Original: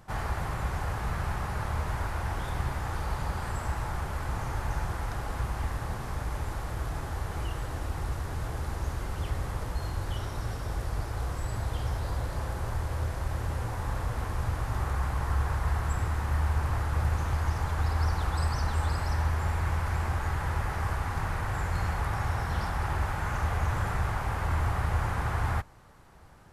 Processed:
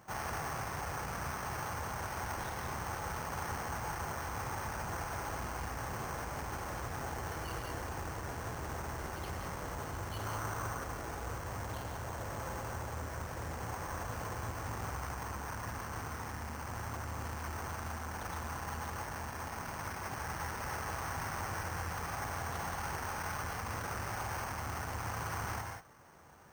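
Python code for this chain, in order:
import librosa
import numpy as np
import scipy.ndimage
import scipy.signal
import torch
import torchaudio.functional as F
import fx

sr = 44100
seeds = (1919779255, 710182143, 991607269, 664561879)

y = scipy.ndimage.median_filter(x, 9, mode='constant')
y = 10.0 ** (-29.0 / 20.0) * np.tanh(y / 10.0 ** (-29.0 / 20.0))
y = fx.peak_eq(y, sr, hz=1200.0, db=7.5, octaves=1.1, at=(10.25, 10.84))
y = fx.rider(y, sr, range_db=10, speed_s=0.5)
y = fx.high_shelf(y, sr, hz=3500.0, db=8.0)
y = fx.rev_gated(y, sr, seeds[0], gate_ms=210, shape='rising', drr_db=3.0)
y = np.repeat(scipy.signal.resample_poly(y, 1, 6), 6)[:len(y)]
y = fx.highpass(y, sr, hz=230.0, slope=6)
y = F.gain(torch.from_numpy(y), -2.0).numpy()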